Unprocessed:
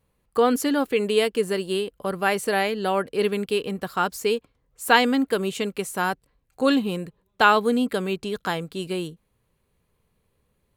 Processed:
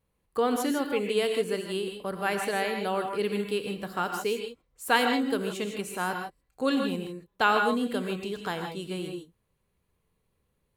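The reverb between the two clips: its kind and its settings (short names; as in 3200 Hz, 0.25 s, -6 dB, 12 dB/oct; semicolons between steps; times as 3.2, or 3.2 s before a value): non-linear reverb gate 0.18 s rising, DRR 4 dB; gain -6.5 dB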